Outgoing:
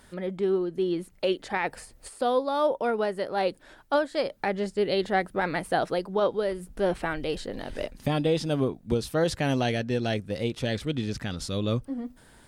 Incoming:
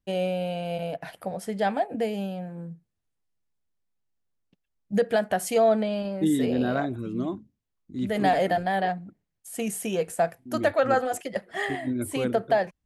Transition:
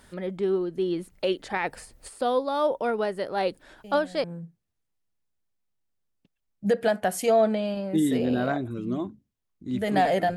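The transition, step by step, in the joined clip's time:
outgoing
0:03.84: mix in incoming from 0:02.12 0.40 s −12 dB
0:04.24: continue with incoming from 0:02.52

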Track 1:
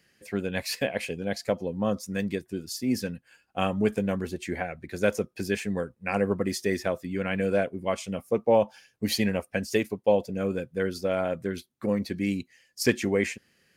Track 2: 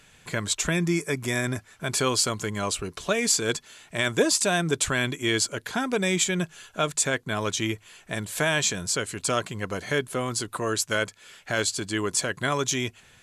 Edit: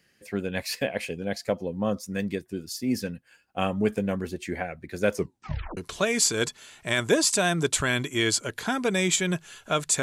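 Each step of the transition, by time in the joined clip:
track 1
0:05.14: tape stop 0.63 s
0:05.77: continue with track 2 from 0:02.85

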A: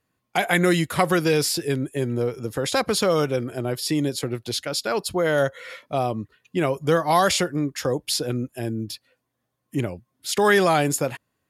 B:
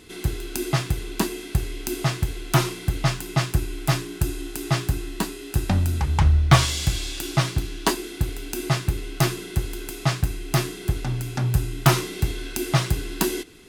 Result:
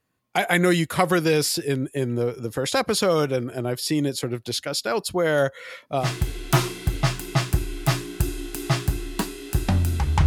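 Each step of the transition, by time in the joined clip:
A
0:06.03: continue with B from 0:02.04, crossfade 0.10 s

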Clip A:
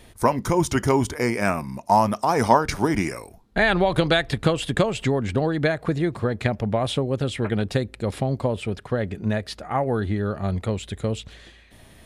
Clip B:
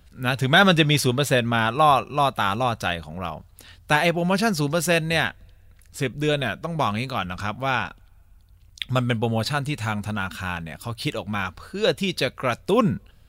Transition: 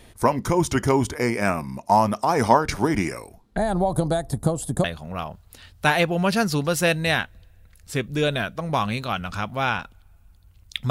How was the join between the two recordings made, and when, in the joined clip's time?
clip A
0:03.57–0:04.84: drawn EQ curve 220 Hz 0 dB, 440 Hz −6 dB, 750 Hz +1 dB, 2,600 Hz −25 dB, 3,900 Hz −12 dB, 10,000 Hz +10 dB
0:04.84: continue with clip B from 0:02.90

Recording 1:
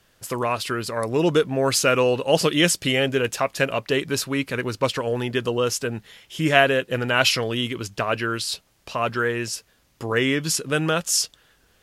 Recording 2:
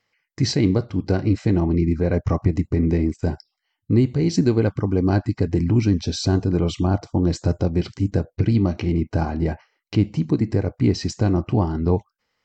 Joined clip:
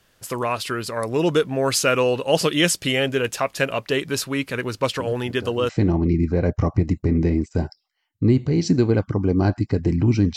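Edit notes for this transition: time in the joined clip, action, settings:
recording 1
0:04.99: mix in recording 2 from 0:00.67 0.70 s −16 dB
0:05.69: continue with recording 2 from 0:01.37

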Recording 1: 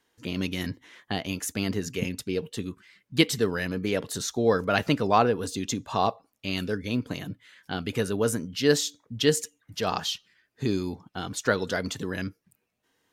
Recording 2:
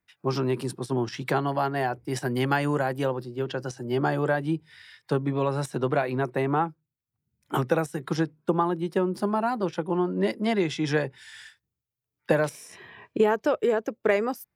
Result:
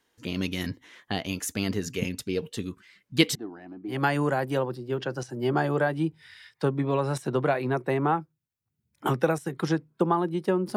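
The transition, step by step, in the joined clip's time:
recording 1
0:03.35–0:04.03: pair of resonant band-passes 490 Hz, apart 1.2 octaves
0:03.95: continue with recording 2 from 0:02.43, crossfade 0.16 s

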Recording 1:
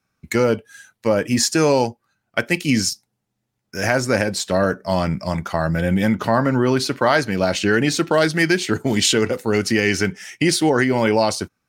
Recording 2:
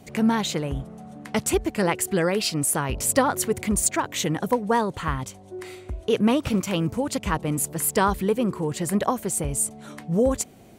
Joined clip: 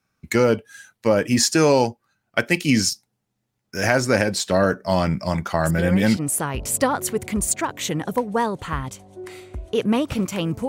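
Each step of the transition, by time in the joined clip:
recording 1
0:05.60: mix in recording 2 from 0:01.95 0.57 s −7.5 dB
0:06.17: continue with recording 2 from 0:02.52

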